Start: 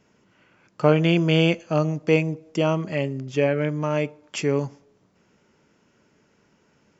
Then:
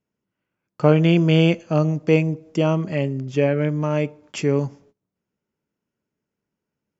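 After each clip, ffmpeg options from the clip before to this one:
ffmpeg -i in.wav -af "agate=range=-23dB:threshold=-53dB:ratio=16:detection=peak,lowshelf=frequency=430:gain=6,volume=-1dB" out.wav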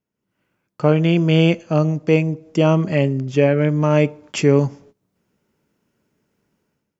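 ffmpeg -i in.wav -af "dynaudnorm=framelen=140:gausssize=5:maxgain=15dB,volume=-1.5dB" out.wav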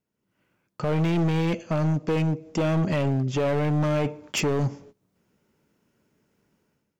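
ffmpeg -i in.wav -af "alimiter=limit=-10.5dB:level=0:latency=1:release=26,volume=20dB,asoftclip=hard,volume=-20dB" out.wav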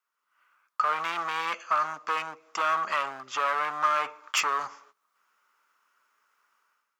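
ffmpeg -i in.wav -af "highpass=frequency=1200:width_type=q:width=6" out.wav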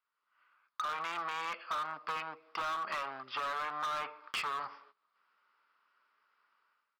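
ffmpeg -i in.wav -af "aresample=11025,aresample=44100,volume=24.5dB,asoftclip=hard,volume=-24.5dB,acompressor=threshold=-30dB:ratio=6,volume=-3.5dB" out.wav

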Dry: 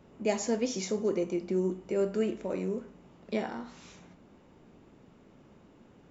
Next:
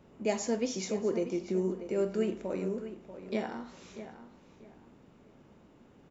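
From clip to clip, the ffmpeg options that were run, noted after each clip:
ffmpeg -i in.wav -filter_complex "[0:a]asplit=2[link_01][link_02];[link_02]adelay=639,lowpass=frequency=3300:poles=1,volume=-11.5dB,asplit=2[link_03][link_04];[link_04]adelay=639,lowpass=frequency=3300:poles=1,volume=0.27,asplit=2[link_05][link_06];[link_06]adelay=639,lowpass=frequency=3300:poles=1,volume=0.27[link_07];[link_01][link_03][link_05][link_07]amix=inputs=4:normalize=0,volume=-1.5dB" out.wav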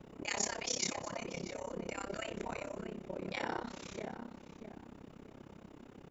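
ffmpeg -i in.wav -af "afftfilt=real='re*lt(hypot(re,im),0.0631)':imag='im*lt(hypot(re,im),0.0631)':win_size=1024:overlap=0.75,tremolo=f=33:d=0.947,volume=8.5dB" out.wav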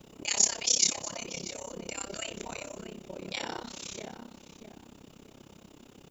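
ffmpeg -i in.wav -af "aexciter=amount=4.1:drive=3.3:freq=2700" out.wav

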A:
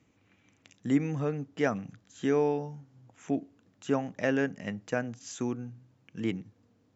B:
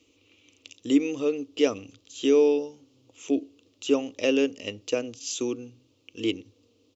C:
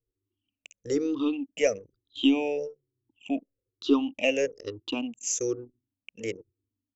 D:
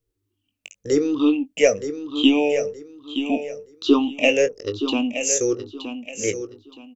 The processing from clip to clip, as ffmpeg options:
ffmpeg -i in.wav -af "firequalizer=gain_entry='entry(100,0);entry(150,-20);entry(280,6);entry(490,8);entry(720,-6);entry(1200,0);entry(1600,-13);entry(2700,14);entry(5100,12);entry(9800,5)':delay=0.05:min_phase=1" out.wav
ffmpeg -i in.wav -af "afftfilt=real='re*pow(10,23/40*sin(2*PI*(0.56*log(max(b,1)*sr/1024/100)/log(2)-(-1.1)*(pts-256)/sr)))':imag='im*pow(10,23/40*sin(2*PI*(0.56*log(max(b,1)*sr/1024/100)/log(2)-(-1.1)*(pts-256)/sr)))':win_size=1024:overlap=0.75,aeval=exprs='0.596*(cos(1*acos(clip(val(0)/0.596,-1,1)))-cos(1*PI/2))+0.00668*(cos(4*acos(clip(val(0)/0.596,-1,1)))-cos(4*PI/2))':channel_layout=same,anlmdn=3.98,volume=-5dB" out.wav
ffmpeg -i in.wav -filter_complex "[0:a]asplit=2[link_01][link_02];[link_02]adelay=20,volume=-9.5dB[link_03];[link_01][link_03]amix=inputs=2:normalize=0,asplit=2[link_04][link_05];[link_05]aecho=0:1:921|1842|2763:0.335|0.0871|0.0226[link_06];[link_04][link_06]amix=inputs=2:normalize=0,volume=7.5dB" out.wav

